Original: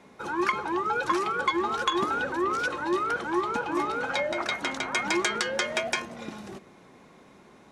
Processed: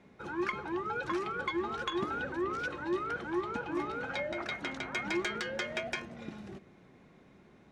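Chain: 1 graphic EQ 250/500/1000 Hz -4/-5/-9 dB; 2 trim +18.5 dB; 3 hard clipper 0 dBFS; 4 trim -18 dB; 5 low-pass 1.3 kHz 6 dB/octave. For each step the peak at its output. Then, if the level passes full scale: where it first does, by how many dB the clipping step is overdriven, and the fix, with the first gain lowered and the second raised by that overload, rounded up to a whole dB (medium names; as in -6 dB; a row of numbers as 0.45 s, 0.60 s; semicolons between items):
-11.0 dBFS, +7.5 dBFS, 0.0 dBFS, -18.0 dBFS, -21.0 dBFS; step 2, 7.5 dB; step 2 +10.5 dB, step 4 -10 dB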